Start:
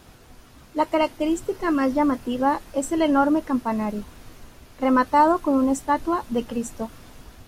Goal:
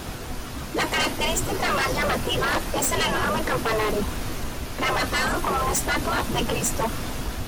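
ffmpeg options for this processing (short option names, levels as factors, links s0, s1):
-af "afftfilt=real='re*lt(hypot(re,im),0.178)':imag='im*lt(hypot(re,im),0.178)':win_size=1024:overlap=0.75,aeval=exprs='0.119*sin(PI/2*3.98*val(0)/0.119)':c=same"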